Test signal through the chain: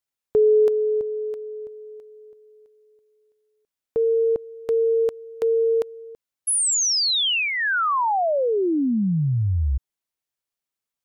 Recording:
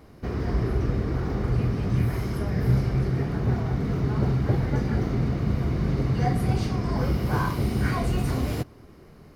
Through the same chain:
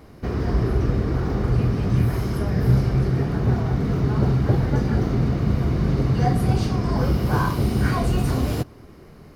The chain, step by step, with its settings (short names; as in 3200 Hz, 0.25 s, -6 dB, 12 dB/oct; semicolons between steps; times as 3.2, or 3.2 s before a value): dynamic EQ 2100 Hz, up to -5 dB, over -50 dBFS, Q 3.9; gain +4 dB